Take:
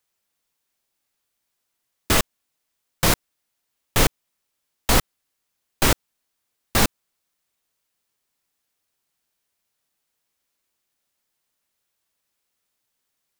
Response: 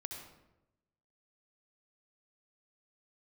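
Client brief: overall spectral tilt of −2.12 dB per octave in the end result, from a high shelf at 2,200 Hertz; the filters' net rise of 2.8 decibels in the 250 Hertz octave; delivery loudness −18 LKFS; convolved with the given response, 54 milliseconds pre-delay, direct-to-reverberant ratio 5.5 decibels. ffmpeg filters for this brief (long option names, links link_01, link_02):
-filter_complex "[0:a]equalizer=frequency=250:width_type=o:gain=3.5,highshelf=frequency=2200:gain=7.5,asplit=2[link_01][link_02];[1:a]atrim=start_sample=2205,adelay=54[link_03];[link_02][link_03]afir=irnorm=-1:irlink=0,volume=-3.5dB[link_04];[link_01][link_04]amix=inputs=2:normalize=0,volume=-1dB"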